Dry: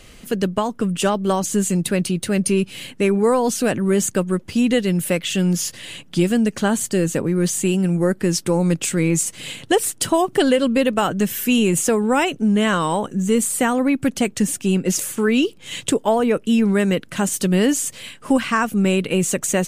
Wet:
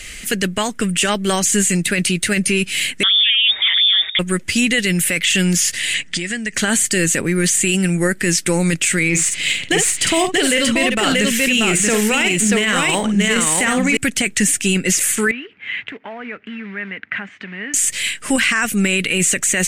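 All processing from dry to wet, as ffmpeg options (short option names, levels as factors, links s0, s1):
-filter_complex "[0:a]asettb=1/sr,asplit=3[s0][s1][s2];[s0]atrim=end=3.034[s3];[s1]atrim=start=3.03:end=4.19,asetpts=PTS-STARTPTS,afade=t=in:d=0.004:c=qsin,afade=t=out:st=1.156:d=0.004:c=qsin,aecho=1:1:5.5:0.98,atrim=end_sample=51156,tremolo=f=250:d=0.621,lowpass=f=3100:t=q:w=0.5098,lowpass=f=3100:t=q:w=0.6013,lowpass=f=3100:t=q:w=0.9,lowpass=f=3100:t=q:w=2.563,afreqshift=-3700[s4];[s2]atrim=start=4.186[s5];[s3][s4]acrossfade=d=0.004:c1=hsin:c2=qsin[s6];[s6][s5]acrossfade=d=0.004:c1=qsin:c2=hsin,asettb=1/sr,asplit=3[s7][s8][s9];[s7]atrim=end=5.944[s10];[s8]atrim=start=5.94:end=6.54,asetpts=PTS-STARTPTS,afade=t=in:d=0.004:c=qsin,afade=t=out:st=0.596:d=0.004:c=qsin,lowpass=f=8600:w=0.5412,lowpass=f=8600:w=1.3066,equalizer=f=1900:t=o:w=0.31:g=9,acompressor=threshold=0.0631:ratio=16:attack=3.2:release=140:knee=1:detection=peak[s11];[s9]atrim=start=6.536[s12];[s10][s11]acrossfade=d=0.004:c1=hsin:c2=qsin[s13];[s13][s12]acrossfade=d=0.004:c1=qsin:c2=hsin,asettb=1/sr,asplit=3[s14][s15][s16];[s14]atrim=end=9.094[s17];[s15]atrim=start=9.09:end=13.97,asetpts=PTS-STARTPTS,afade=t=in:d=0.004:c=qsin,afade=t=out:st=4.876:d=0.004:c=qsin,equalizer=f=1600:t=o:w=0.36:g=-4,adynamicsmooth=sensitivity=5:basefreq=4500,aecho=1:1:52|633:0.355|0.708,atrim=end_sample=215208[s18];[s16]atrim=start=13.966[s19];[s17][s18]acrossfade=d=0.004:c1=hsin:c2=qsin[s20];[s20][s19]acrossfade=d=0.004:c1=qsin:c2=hsin,asettb=1/sr,asplit=3[s21][s22][s23];[s21]atrim=end=15.314[s24];[s22]atrim=start=15.31:end=17.74,asetpts=PTS-STARTPTS,afade=t=in:d=0.004:c=qsin,afade=t=out:st=2.426:d=0.004:c=qsin,acompressor=threshold=0.0398:ratio=5:attack=3.2:release=140:knee=1:detection=peak,acrusher=bits=4:mode=log:mix=0:aa=0.000001,highpass=140,equalizer=f=160:t=q:w=4:g=-10,equalizer=f=340:t=q:w=4:g=-9,equalizer=f=530:t=q:w=4:g=-8,lowpass=f=2200:w=0.5412,lowpass=f=2200:w=1.3066[s25];[s23]atrim=start=17.736[s26];[s24][s25]acrossfade=d=0.004:c1=hsin:c2=qsin[s27];[s27][s26]acrossfade=d=0.004:c1=qsin:c2=hsin,acrossover=split=3100[s28][s29];[s29]acompressor=threshold=0.0398:ratio=4:attack=1:release=60[s30];[s28][s30]amix=inputs=2:normalize=0,equalizer=f=125:t=o:w=1:g=-8,equalizer=f=250:t=o:w=1:g=-5,equalizer=f=500:t=o:w=1:g=-6,equalizer=f=1000:t=o:w=1:g=-10,equalizer=f=2000:t=o:w=1:g=11,equalizer=f=8000:t=o:w=1:g=9,alimiter=limit=0.168:level=0:latency=1:release=14,volume=2.66"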